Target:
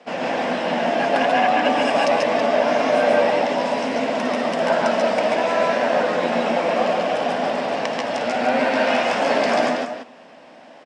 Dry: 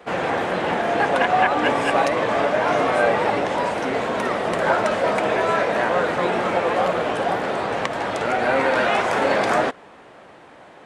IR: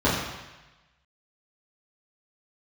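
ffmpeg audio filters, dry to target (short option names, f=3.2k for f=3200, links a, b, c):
-af "highpass=180,equalizer=f=240:t=q:w=4:g=10,equalizer=f=380:t=q:w=4:g=-6,equalizer=f=630:t=q:w=4:g=6,equalizer=f=1.3k:t=q:w=4:g=-5,equalizer=f=2.8k:t=q:w=4:g=5,equalizer=f=5.2k:t=q:w=4:g=10,lowpass=f=9.1k:w=0.5412,lowpass=f=9.1k:w=1.3066,aecho=1:1:136|148|326:0.708|0.631|0.335,volume=-4dB"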